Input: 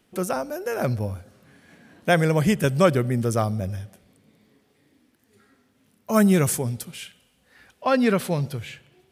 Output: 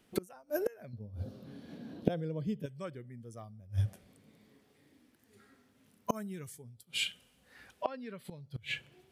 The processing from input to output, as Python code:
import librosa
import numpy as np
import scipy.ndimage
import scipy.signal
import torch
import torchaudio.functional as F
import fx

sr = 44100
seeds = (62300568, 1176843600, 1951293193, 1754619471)

y = fx.noise_reduce_blind(x, sr, reduce_db=10)
y = fx.gate_flip(y, sr, shuts_db=-24.0, range_db=-31)
y = fx.graphic_eq(y, sr, hz=(125, 250, 500, 2000, 4000, 8000), db=(6, 10, 6, -9, 9, -10), at=(0.93, 2.66))
y = F.gain(torch.from_numpy(y), 6.5).numpy()